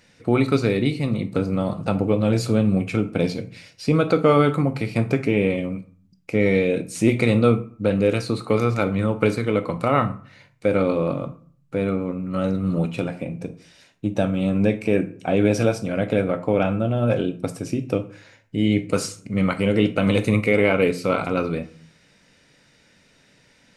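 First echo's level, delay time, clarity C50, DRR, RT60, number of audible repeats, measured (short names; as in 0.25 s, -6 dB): none, none, 15.0 dB, 10.0 dB, 0.45 s, none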